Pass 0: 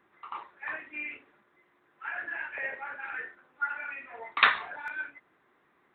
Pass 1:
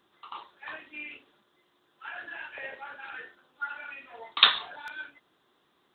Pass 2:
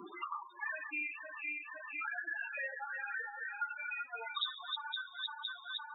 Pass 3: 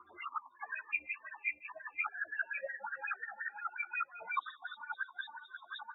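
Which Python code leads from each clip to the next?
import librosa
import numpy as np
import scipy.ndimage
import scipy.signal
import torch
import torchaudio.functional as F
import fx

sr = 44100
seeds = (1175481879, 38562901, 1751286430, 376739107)

y1 = fx.high_shelf_res(x, sr, hz=2700.0, db=7.5, q=3.0)
y1 = F.gain(torch.from_numpy(y1), -1.0).numpy()
y2 = fx.reverse_delay_fb(y1, sr, ms=255, feedback_pct=70, wet_db=-8.0)
y2 = fx.spec_topn(y2, sr, count=8)
y2 = fx.band_squash(y2, sr, depth_pct=100)
y2 = F.gain(torch.from_numpy(y2), -1.5).numpy()
y3 = fx.octave_divider(y2, sr, octaves=2, level_db=4.0)
y3 = fx.wah_lfo(y3, sr, hz=5.6, low_hz=520.0, high_hz=2400.0, q=9.5)
y3 = fx.ensemble(y3, sr)
y3 = F.gain(torch.from_numpy(y3), 14.5).numpy()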